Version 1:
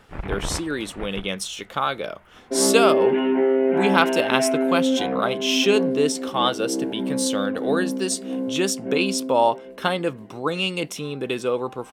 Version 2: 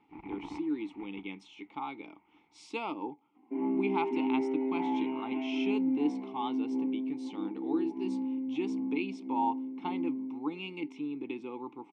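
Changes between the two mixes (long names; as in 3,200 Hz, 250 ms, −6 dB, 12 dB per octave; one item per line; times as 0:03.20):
speech: add Bessel low-pass filter 6,500 Hz, order 4
second sound: entry +1.00 s
master: add formant filter u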